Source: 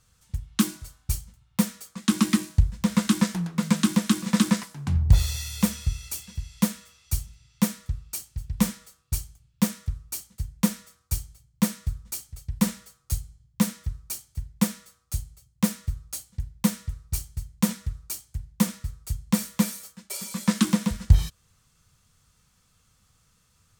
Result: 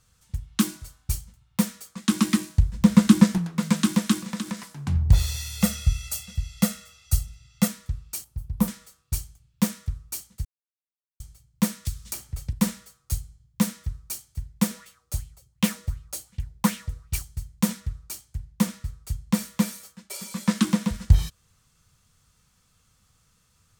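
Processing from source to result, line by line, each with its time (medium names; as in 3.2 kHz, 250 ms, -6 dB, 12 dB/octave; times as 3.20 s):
2.74–3.38 s: bass shelf 490 Hz +8.5 dB
4.19–4.74 s: compression 2:1, threshold -34 dBFS
5.61–7.68 s: comb 1.5 ms, depth 85%
8.24–8.68 s: high-order bell 3.6 kHz -10 dB 2.7 oct
10.45–11.20 s: mute
11.85–12.53 s: three bands compressed up and down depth 100%
14.71–17.23 s: sweeping bell 2.7 Hz 380–3000 Hz +12 dB
17.80–20.94 s: treble shelf 5.8 kHz -4 dB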